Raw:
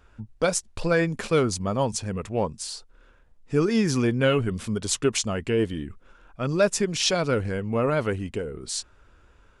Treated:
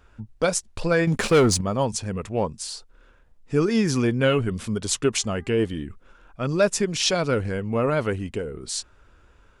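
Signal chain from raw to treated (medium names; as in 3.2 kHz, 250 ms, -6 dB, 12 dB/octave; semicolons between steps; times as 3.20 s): 1.07–1.61 s: waveshaping leveller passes 2; 5.18–5.67 s: mains buzz 400 Hz, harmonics 5, -58 dBFS; trim +1 dB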